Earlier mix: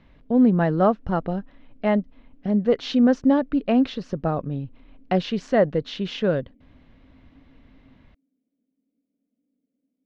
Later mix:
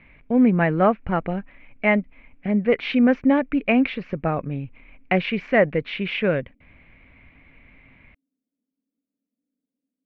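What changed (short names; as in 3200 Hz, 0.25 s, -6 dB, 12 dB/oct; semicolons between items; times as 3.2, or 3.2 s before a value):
speech: add synth low-pass 2300 Hz, resonance Q 8.5; background -7.5 dB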